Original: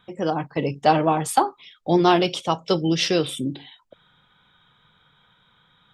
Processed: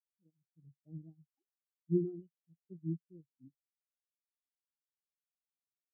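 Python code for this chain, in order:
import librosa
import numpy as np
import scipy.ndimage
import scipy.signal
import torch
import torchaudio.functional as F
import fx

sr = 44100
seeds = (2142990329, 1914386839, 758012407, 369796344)

p1 = fx.filter_lfo_lowpass(x, sr, shape='saw_up', hz=1.2, low_hz=460.0, high_hz=4900.0, q=1.4)
p2 = fx.tone_stack(p1, sr, knobs='10-0-1')
p3 = fx.quant_dither(p2, sr, seeds[0], bits=6, dither='none')
p4 = p2 + (p3 * 10.0 ** (-3.0 / 20.0))
p5 = fx.spectral_expand(p4, sr, expansion=4.0)
y = p5 * 10.0 ** (1.0 / 20.0)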